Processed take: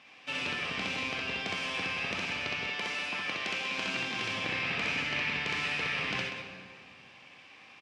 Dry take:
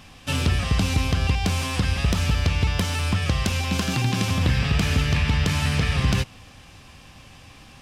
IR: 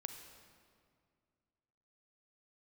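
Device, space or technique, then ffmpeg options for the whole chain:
station announcement: -filter_complex "[0:a]highpass=340,lowpass=4.6k,equalizer=f=2.3k:t=o:w=0.6:g=8,aecho=1:1:64.14|192.4:0.891|0.355[a];[1:a]atrim=start_sample=2205[b];[a][b]afir=irnorm=-1:irlink=0,asettb=1/sr,asplit=3[c][d][e];[c]atrim=end=2.674[f];[d]atrim=start=2.67:end=3.79,asetpts=PTS-STARTPTS,afade=t=in:d=0.004:c=qsin,afade=t=out:st=1.116:d=0.004:c=qsin,highpass=f=230:p=1[g];[e]atrim=start=3.786[h];[f][g]acrossfade=d=0.004:c1=hsin:c2=qsin[i];[i][h]acrossfade=d=0.004:c1=qsin:c2=hsin,volume=-6.5dB"

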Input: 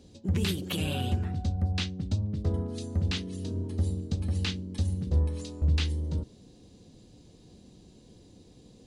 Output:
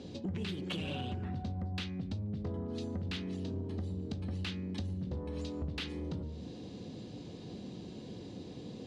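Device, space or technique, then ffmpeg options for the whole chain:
AM radio: -af "highpass=110,lowpass=3.9k,bandreject=f=77.25:t=h:w=4,bandreject=f=154.5:t=h:w=4,bandreject=f=231.75:t=h:w=4,bandreject=f=309:t=h:w=4,bandreject=f=386.25:t=h:w=4,bandreject=f=463.5:t=h:w=4,bandreject=f=540.75:t=h:w=4,bandreject=f=618:t=h:w=4,bandreject=f=695.25:t=h:w=4,bandreject=f=772.5:t=h:w=4,bandreject=f=849.75:t=h:w=4,bandreject=f=927:t=h:w=4,bandreject=f=1.00425k:t=h:w=4,bandreject=f=1.0815k:t=h:w=4,bandreject=f=1.15875k:t=h:w=4,bandreject=f=1.236k:t=h:w=4,bandreject=f=1.31325k:t=h:w=4,bandreject=f=1.3905k:t=h:w=4,bandreject=f=1.46775k:t=h:w=4,bandreject=f=1.545k:t=h:w=4,bandreject=f=1.62225k:t=h:w=4,bandreject=f=1.6995k:t=h:w=4,bandreject=f=1.77675k:t=h:w=4,bandreject=f=1.854k:t=h:w=4,bandreject=f=1.93125k:t=h:w=4,bandreject=f=2.0085k:t=h:w=4,bandreject=f=2.08575k:t=h:w=4,bandreject=f=2.163k:t=h:w=4,bandreject=f=2.24025k:t=h:w=4,bandreject=f=2.3175k:t=h:w=4,bandreject=f=2.39475k:t=h:w=4,bandreject=f=2.472k:t=h:w=4,bandreject=f=2.54925k:t=h:w=4,acompressor=threshold=-45dB:ratio=6,asoftclip=type=tanh:threshold=-39.5dB,volume=10.5dB"

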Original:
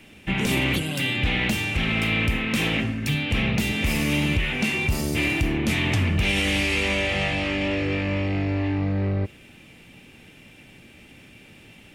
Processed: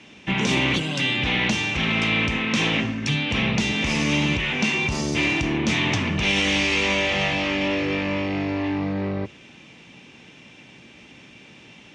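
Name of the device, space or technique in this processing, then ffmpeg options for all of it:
car door speaker: -af "highpass=84,equalizer=f=93:t=q:w=4:g=-9,equalizer=f=1k:t=q:w=4:g=6,equalizer=f=3.5k:t=q:w=4:g=3,equalizer=f=6k:t=q:w=4:g=7,lowpass=f=6.9k:w=0.5412,lowpass=f=6.9k:w=1.3066,volume=1.5dB"

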